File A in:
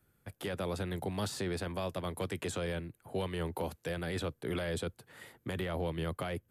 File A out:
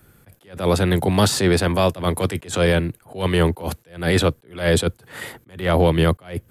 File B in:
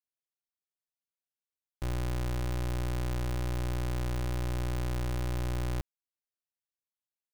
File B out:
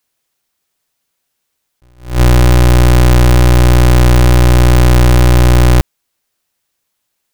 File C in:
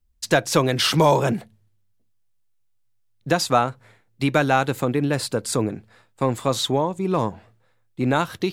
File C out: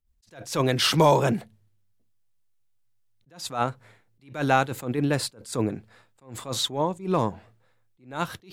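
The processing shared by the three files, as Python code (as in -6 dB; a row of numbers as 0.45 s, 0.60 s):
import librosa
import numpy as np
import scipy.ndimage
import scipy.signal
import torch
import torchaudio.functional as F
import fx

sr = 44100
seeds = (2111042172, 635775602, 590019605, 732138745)

y = fx.attack_slew(x, sr, db_per_s=160.0)
y = y * 10.0 ** (-6 / 20.0) / np.max(np.abs(y))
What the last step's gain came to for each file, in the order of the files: +19.0 dB, +25.0 dB, -1.5 dB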